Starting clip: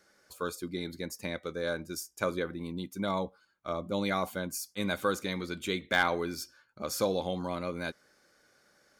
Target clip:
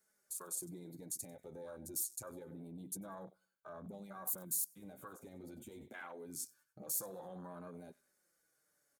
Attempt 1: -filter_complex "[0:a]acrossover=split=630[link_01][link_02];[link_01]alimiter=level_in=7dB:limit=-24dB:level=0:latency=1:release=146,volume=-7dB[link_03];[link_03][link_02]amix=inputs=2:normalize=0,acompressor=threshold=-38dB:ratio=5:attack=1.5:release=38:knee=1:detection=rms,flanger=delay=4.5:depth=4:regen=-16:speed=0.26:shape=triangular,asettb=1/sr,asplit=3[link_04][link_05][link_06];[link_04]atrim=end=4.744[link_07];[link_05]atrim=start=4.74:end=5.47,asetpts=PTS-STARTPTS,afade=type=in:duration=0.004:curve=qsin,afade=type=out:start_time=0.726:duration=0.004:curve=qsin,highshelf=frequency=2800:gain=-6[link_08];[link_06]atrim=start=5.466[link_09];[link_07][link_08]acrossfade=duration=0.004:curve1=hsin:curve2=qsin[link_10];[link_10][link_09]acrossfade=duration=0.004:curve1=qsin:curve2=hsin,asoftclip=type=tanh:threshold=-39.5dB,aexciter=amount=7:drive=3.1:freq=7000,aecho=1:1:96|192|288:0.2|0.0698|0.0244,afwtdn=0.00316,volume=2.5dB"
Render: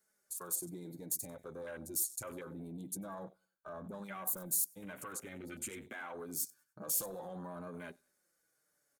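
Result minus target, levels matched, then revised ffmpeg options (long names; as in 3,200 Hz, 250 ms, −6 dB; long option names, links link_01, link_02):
downward compressor: peak gain reduction −5 dB
-filter_complex "[0:a]acrossover=split=630[link_01][link_02];[link_01]alimiter=level_in=7dB:limit=-24dB:level=0:latency=1:release=146,volume=-7dB[link_03];[link_03][link_02]amix=inputs=2:normalize=0,acompressor=threshold=-44dB:ratio=5:attack=1.5:release=38:knee=1:detection=rms,flanger=delay=4.5:depth=4:regen=-16:speed=0.26:shape=triangular,asettb=1/sr,asplit=3[link_04][link_05][link_06];[link_04]atrim=end=4.744[link_07];[link_05]atrim=start=4.74:end=5.47,asetpts=PTS-STARTPTS,afade=type=in:duration=0.004:curve=qsin,afade=type=out:start_time=0.726:duration=0.004:curve=qsin,highshelf=frequency=2800:gain=-6[link_08];[link_06]atrim=start=5.466[link_09];[link_07][link_08]acrossfade=duration=0.004:curve1=hsin:curve2=qsin[link_10];[link_10][link_09]acrossfade=duration=0.004:curve1=qsin:curve2=hsin,asoftclip=type=tanh:threshold=-39.5dB,aexciter=amount=7:drive=3.1:freq=7000,aecho=1:1:96|192|288:0.2|0.0698|0.0244,afwtdn=0.00316,volume=2.5dB"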